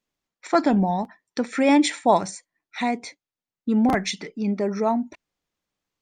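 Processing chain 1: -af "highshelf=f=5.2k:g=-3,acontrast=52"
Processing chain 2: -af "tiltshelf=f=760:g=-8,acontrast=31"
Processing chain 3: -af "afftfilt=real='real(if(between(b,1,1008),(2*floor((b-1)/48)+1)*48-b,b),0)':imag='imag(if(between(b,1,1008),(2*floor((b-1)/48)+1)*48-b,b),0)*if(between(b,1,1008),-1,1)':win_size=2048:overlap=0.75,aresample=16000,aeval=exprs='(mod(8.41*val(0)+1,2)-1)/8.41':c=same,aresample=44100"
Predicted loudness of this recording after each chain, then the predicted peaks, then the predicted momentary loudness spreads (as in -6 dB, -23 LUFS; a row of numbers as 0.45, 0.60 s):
-17.5, -19.0, -25.0 LUFS; -3.5, -2.0, -13.5 dBFS; 15, 15, 12 LU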